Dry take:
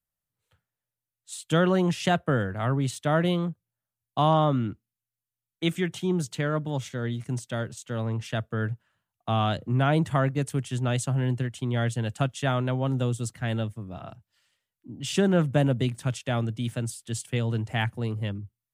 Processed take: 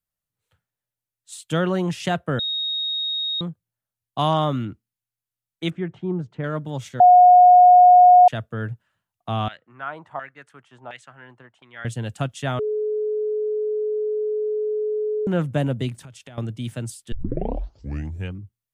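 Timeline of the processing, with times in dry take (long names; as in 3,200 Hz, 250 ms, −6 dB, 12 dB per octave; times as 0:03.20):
0:02.39–0:03.41: beep over 3,750 Hz −22.5 dBFS
0:04.19–0:04.65: high-shelf EQ 2,100 Hz +8 dB
0:05.70–0:06.44: low-pass filter 1,300 Hz
0:07.00–0:08.28: beep over 722 Hz −7 dBFS
0:09.48–0:11.85: auto-filter band-pass saw down 1.4 Hz 810–2,100 Hz
0:12.59–0:15.27: beep over 426 Hz −21 dBFS
0:15.98–0:16.38: downward compressor 20 to 1, threshold −38 dBFS
0:17.12: tape start 1.31 s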